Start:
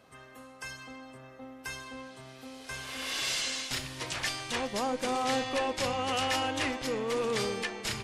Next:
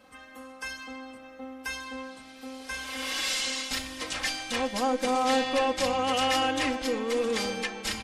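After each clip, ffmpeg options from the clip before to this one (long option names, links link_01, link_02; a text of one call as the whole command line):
ffmpeg -i in.wav -af "aecho=1:1:3.8:0.87" out.wav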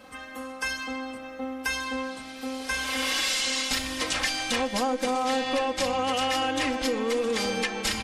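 ffmpeg -i in.wav -af "acompressor=threshold=-31dB:ratio=6,volume=7.5dB" out.wav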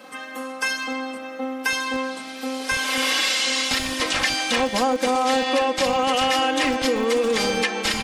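ffmpeg -i in.wav -filter_complex "[0:a]acrossover=split=170|5000[link_01][link_02][link_03];[link_01]acrusher=bits=4:dc=4:mix=0:aa=0.000001[link_04];[link_03]alimiter=level_in=5.5dB:limit=-24dB:level=0:latency=1,volume=-5.5dB[link_05];[link_04][link_02][link_05]amix=inputs=3:normalize=0,volume=6dB" out.wav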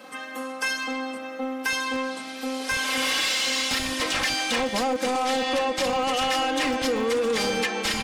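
ffmpeg -i in.wav -af "aeval=exprs='0.398*(cos(1*acos(clip(val(0)/0.398,-1,1)))-cos(1*PI/2))+0.0794*(cos(5*acos(clip(val(0)/0.398,-1,1)))-cos(5*PI/2))':channel_layout=same,volume=-7dB" out.wav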